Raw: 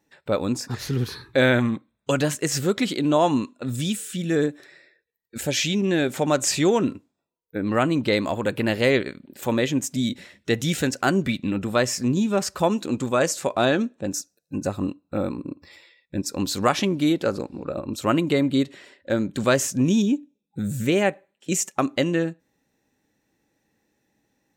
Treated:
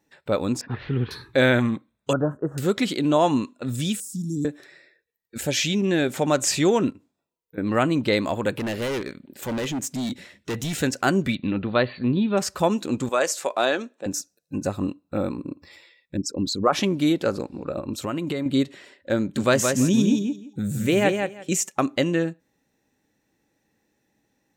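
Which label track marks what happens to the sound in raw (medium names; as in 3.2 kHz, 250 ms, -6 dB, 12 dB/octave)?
0.610000	1.110000	steep low-pass 3.2 kHz
2.130000	2.580000	elliptic low-pass 1.4 kHz
4.000000	4.450000	Chebyshev band-stop 290–5100 Hz, order 4
6.900000	7.580000	compression 4:1, threshold -43 dBFS
8.510000	10.810000	hard clipper -24.5 dBFS
11.350000	12.370000	brick-wall FIR low-pass 4.6 kHz
13.090000	14.060000	high-pass 430 Hz
16.170000	16.730000	resonances exaggerated exponent 2
17.890000	18.460000	compression, threshold -23 dBFS
19.190000	21.530000	feedback delay 170 ms, feedback 17%, level -5 dB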